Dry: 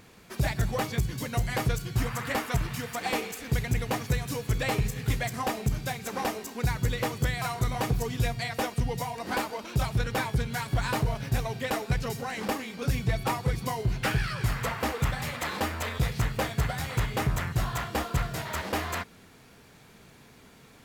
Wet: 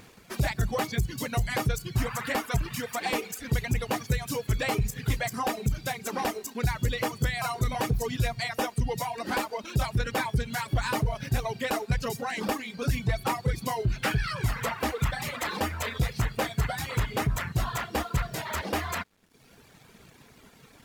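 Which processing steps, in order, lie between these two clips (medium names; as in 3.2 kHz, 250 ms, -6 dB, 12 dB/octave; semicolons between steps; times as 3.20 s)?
reverb removal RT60 0.93 s; in parallel at +2 dB: peak limiter -28 dBFS, peak gain reduction 10.5 dB; on the sum: crossover distortion -58.5 dBFS; trim -2.5 dB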